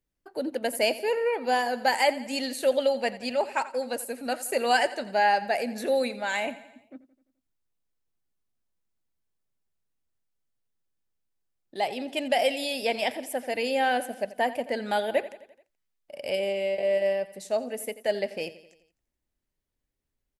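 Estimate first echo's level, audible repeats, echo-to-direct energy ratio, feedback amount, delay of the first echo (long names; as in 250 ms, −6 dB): −16.5 dB, 4, −15.0 dB, 55%, 86 ms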